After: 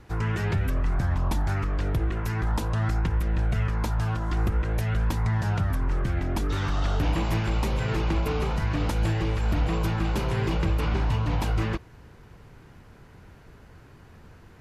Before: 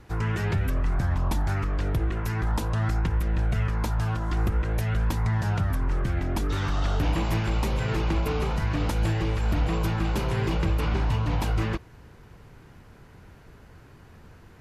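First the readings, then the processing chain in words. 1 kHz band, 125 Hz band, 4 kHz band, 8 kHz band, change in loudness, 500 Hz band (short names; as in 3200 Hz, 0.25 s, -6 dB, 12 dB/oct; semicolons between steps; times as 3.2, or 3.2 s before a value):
0.0 dB, 0.0 dB, 0.0 dB, -1.0 dB, 0.0 dB, 0.0 dB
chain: high shelf 11000 Hz -3 dB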